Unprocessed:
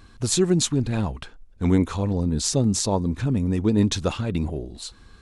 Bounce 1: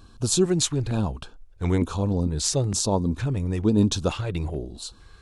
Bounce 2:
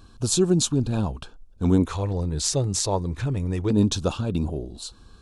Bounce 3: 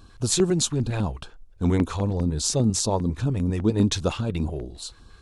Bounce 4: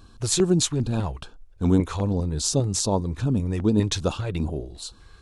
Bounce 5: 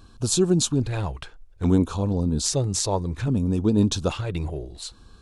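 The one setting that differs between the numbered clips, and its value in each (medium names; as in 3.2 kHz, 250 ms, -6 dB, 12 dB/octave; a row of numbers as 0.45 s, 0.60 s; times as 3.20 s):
LFO notch, rate: 1.1 Hz, 0.27 Hz, 5 Hz, 2.5 Hz, 0.61 Hz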